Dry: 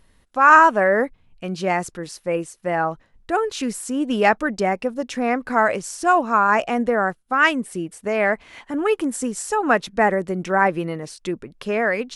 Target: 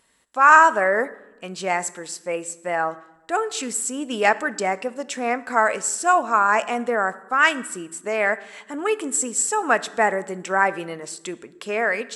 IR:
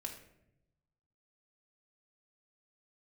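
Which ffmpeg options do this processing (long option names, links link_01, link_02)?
-filter_complex "[0:a]highpass=frequency=590:poles=1,equalizer=frequency=7700:width=6.6:gain=14,asplit=2[link_01][link_02];[1:a]atrim=start_sample=2205,asetrate=29988,aresample=44100[link_03];[link_02][link_03]afir=irnorm=-1:irlink=0,volume=-9.5dB[link_04];[link_01][link_04]amix=inputs=2:normalize=0,volume=-1.5dB"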